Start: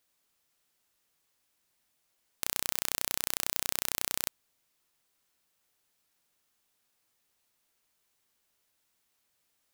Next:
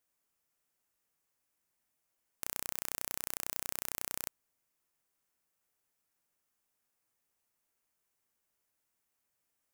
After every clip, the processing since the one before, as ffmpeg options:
ffmpeg -i in.wav -af "equalizer=frequency=3800:width_type=o:width=0.92:gain=-7.5,volume=-5.5dB" out.wav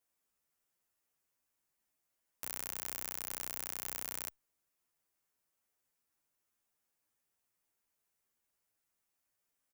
ffmpeg -i in.wav -filter_complex "[0:a]asplit=2[link_01][link_02];[link_02]adelay=10.3,afreqshift=-1.8[link_03];[link_01][link_03]amix=inputs=2:normalize=1,volume=1dB" out.wav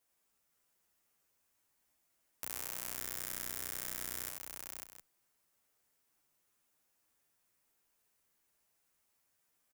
ffmpeg -i in.wav -filter_complex "[0:a]asplit=2[link_01][link_02];[link_02]aecho=0:1:83|548|713:0.562|0.501|0.141[link_03];[link_01][link_03]amix=inputs=2:normalize=0,acompressor=threshold=-47dB:ratio=1.5,volume=4dB" out.wav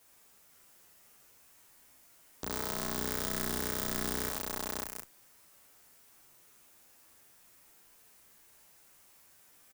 ffmpeg -i in.wav -filter_complex "[0:a]acrossover=split=350[link_01][link_02];[link_02]alimiter=limit=-21dB:level=0:latency=1:release=335[link_03];[link_01][link_03]amix=inputs=2:normalize=0,aeval=exprs='0.0944*sin(PI/2*3.98*val(0)/0.0944)':channel_layout=same,asplit=2[link_04][link_05];[link_05]adelay=37,volume=-6.5dB[link_06];[link_04][link_06]amix=inputs=2:normalize=0" out.wav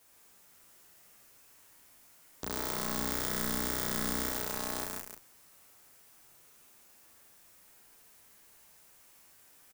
ffmpeg -i in.wav -af "aecho=1:1:144:0.596" out.wav

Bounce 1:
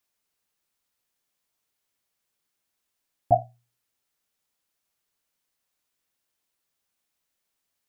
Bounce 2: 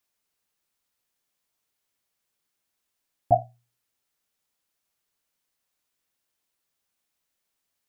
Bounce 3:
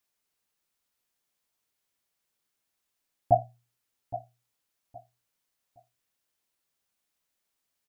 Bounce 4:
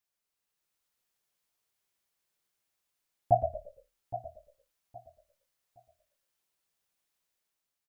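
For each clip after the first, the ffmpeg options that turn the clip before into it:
ffmpeg -i in.wav -af anull out.wav
ffmpeg -i in.wav -af "aecho=1:1:817|1634|2451:0.188|0.049|0.0127,volume=-1.5dB" out.wav
ffmpeg -i in.wav -filter_complex "[0:a]dynaudnorm=framelen=120:gausssize=9:maxgain=5dB,equalizer=frequency=260:width=6.5:gain=-8.5,asplit=5[link_01][link_02][link_03][link_04][link_05];[link_02]adelay=114,afreqshift=-39,volume=-8.5dB[link_06];[link_03]adelay=228,afreqshift=-78,volume=-17.9dB[link_07];[link_04]adelay=342,afreqshift=-117,volume=-27.2dB[link_08];[link_05]adelay=456,afreqshift=-156,volume=-36.6dB[link_09];[link_01][link_06][link_07][link_08][link_09]amix=inputs=5:normalize=0,volume=-6.5dB" out.wav

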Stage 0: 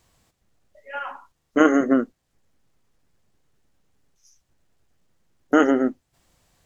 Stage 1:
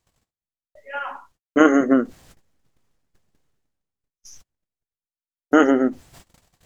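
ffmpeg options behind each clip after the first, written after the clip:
ffmpeg -i in.wav -af "agate=range=-47dB:threshold=-58dB:ratio=16:detection=peak,areverse,acompressor=mode=upward:threshold=-34dB:ratio=2.5,areverse,volume=2dB" out.wav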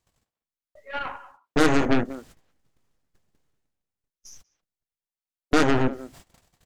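ffmpeg -i in.wav -filter_complex "[0:a]asplit=2[link_01][link_02];[link_02]adelay=190,highpass=300,lowpass=3400,asoftclip=type=hard:threshold=-10.5dB,volume=-15dB[link_03];[link_01][link_03]amix=inputs=2:normalize=0,aeval=exprs='0.891*(cos(1*acos(clip(val(0)/0.891,-1,1)))-cos(1*PI/2))+0.0794*(cos(3*acos(clip(val(0)/0.891,-1,1)))-cos(3*PI/2))+0.158*(cos(8*acos(clip(val(0)/0.891,-1,1)))-cos(8*PI/2))':channel_layout=same,asoftclip=type=tanh:threshold=-11.5dB" out.wav

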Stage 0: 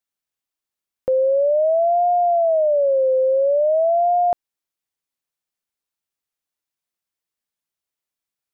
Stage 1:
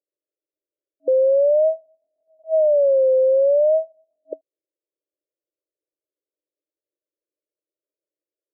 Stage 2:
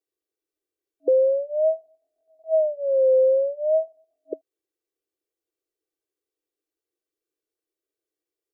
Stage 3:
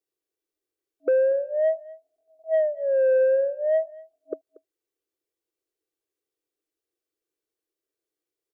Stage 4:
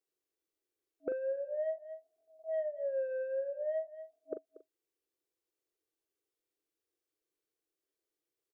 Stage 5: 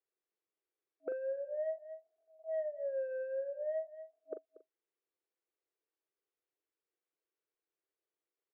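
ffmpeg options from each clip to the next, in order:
ffmpeg -i in.wav -af "afftfilt=real='re*between(b*sr/4096,290,640)':imag='im*between(b*sr/4096,290,640)':win_size=4096:overlap=0.75,alimiter=limit=-21dB:level=0:latency=1:release=84,volume=8.5dB" out.wav
ffmpeg -i in.wav -af "aecho=1:1:2.6:0.97" out.wav
ffmpeg -i in.wav -af "asoftclip=type=tanh:threshold=-14.5dB,aecho=1:1:235:0.0841" out.wav
ffmpeg -i in.wav -filter_complex "[0:a]acompressor=threshold=-32dB:ratio=5,asplit=2[link_01][link_02];[link_02]adelay=41,volume=-8dB[link_03];[link_01][link_03]amix=inputs=2:normalize=0,volume=-3.5dB" out.wav
ffmpeg -i in.wav -af "highpass=420,lowpass=2400,volume=-1dB" out.wav

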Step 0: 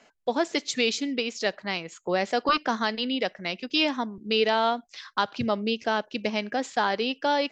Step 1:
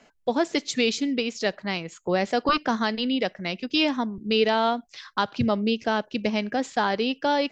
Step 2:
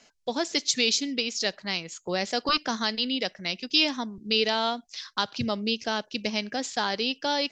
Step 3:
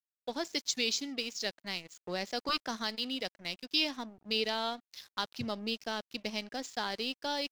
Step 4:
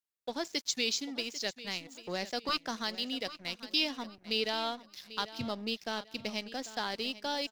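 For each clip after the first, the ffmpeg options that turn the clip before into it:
ffmpeg -i in.wav -af "lowshelf=frequency=230:gain=9.5" out.wav
ffmpeg -i in.wav -af "equalizer=frequency=5500:width_type=o:width=1.8:gain=14,volume=-6dB" out.wav
ffmpeg -i in.wav -af "aeval=exprs='sgn(val(0))*max(abs(val(0))-0.00708,0)':channel_layout=same,volume=-7dB" out.wav
ffmpeg -i in.wav -af "aecho=1:1:793|1586|2379:0.168|0.0571|0.0194" out.wav

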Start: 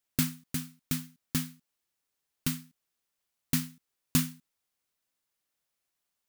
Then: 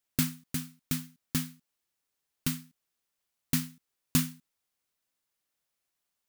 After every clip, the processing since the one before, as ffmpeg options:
ffmpeg -i in.wav -af anull out.wav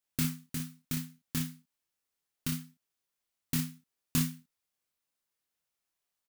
ffmpeg -i in.wav -af "aecho=1:1:25|57:0.631|0.422,volume=-5dB" out.wav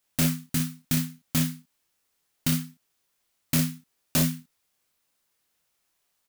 ffmpeg -i in.wav -af "aeval=exprs='0.178*sin(PI/2*3.16*val(0)/0.178)':channel_layout=same,volume=-2.5dB" out.wav

